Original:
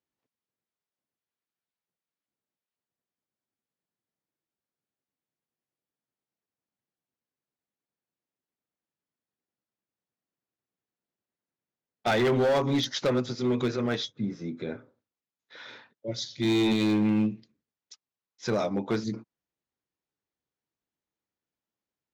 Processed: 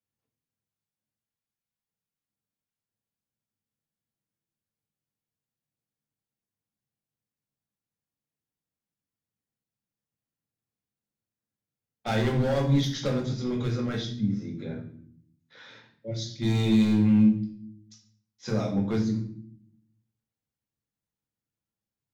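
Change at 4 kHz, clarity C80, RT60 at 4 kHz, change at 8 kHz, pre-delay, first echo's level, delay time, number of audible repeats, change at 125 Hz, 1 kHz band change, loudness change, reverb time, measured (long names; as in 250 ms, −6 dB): −3.5 dB, 12.5 dB, 0.45 s, −1.5 dB, 4 ms, no echo audible, no echo audible, no echo audible, +7.0 dB, −4.0 dB, +1.5 dB, 0.60 s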